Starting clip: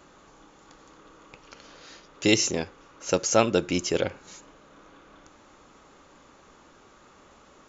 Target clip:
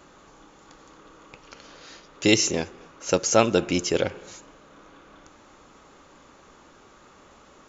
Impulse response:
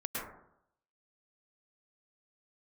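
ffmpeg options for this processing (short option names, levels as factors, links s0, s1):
-filter_complex "[0:a]asplit=2[s0][s1];[1:a]atrim=start_sample=2205,asetrate=70560,aresample=44100,adelay=133[s2];[s1][s2]afir=irnorm=-1:irlink=0,volume=0.0794[s3];[s0][s3]amix=inputs=2:normalize=0,volume=1.26"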